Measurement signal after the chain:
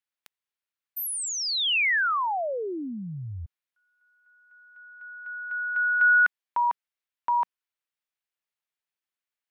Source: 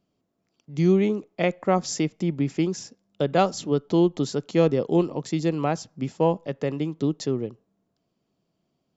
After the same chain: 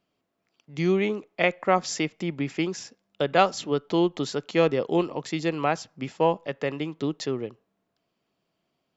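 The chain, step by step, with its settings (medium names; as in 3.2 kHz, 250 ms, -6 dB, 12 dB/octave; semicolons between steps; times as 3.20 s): FFT filter 190 Hz 0 dB, 1.8 kHz +12 dB, 2.6 kHz +12 dB, 6.4 kHz +4 dB; trim -6 dB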